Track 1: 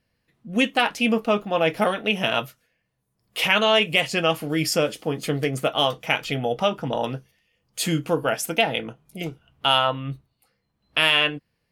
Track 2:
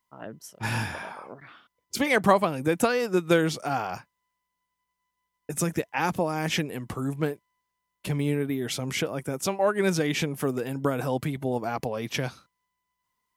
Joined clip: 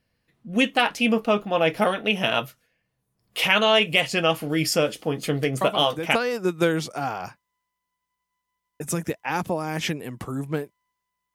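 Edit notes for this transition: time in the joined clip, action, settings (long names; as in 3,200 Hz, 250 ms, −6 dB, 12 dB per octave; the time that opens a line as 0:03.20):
track 1
0:05.61: mix in track 2 from 0:02.30 0.54 s −6.5 dB
0:06.15: continue with track 2 from 0:02.84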